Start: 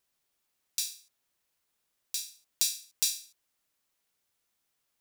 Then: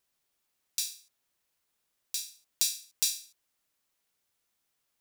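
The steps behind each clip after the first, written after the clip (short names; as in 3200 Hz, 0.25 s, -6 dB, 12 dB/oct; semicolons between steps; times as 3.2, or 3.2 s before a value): nothing audible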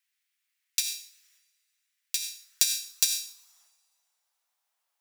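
transient shaper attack +8 dB, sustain +12 dB; two-slope reverb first 0.66 s, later 2 s, from -18 dB, DRR 11.5 dB; high-pass sweep 2000 Hz -> 790 Hz, 2.19–3.78; gain -3 dB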